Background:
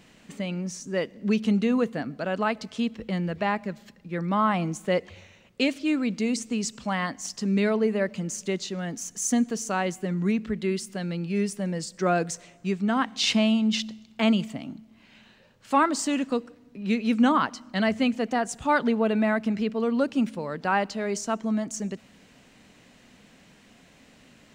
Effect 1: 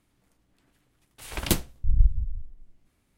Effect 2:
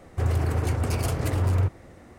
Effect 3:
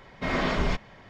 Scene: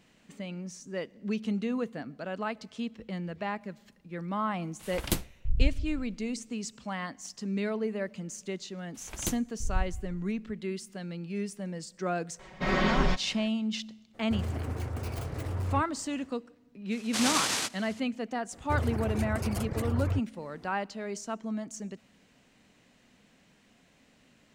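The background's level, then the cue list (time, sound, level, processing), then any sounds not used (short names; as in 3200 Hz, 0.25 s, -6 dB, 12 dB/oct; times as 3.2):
background -8 dB
3.61 add 1 -5.5 dB
7.76 add 1 -10.5 dB
12.39 add 3 -2 dB + comb 5.4 ms, depth 68%
14.13 add 2 -9.5 dB, fades 0.02 s + tracing distortion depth 0.15 ms
16.91 add 3 -2 dB + noise vocoder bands 1
18.52 add 2 -5.5 dB + reverb removal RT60 0.63 s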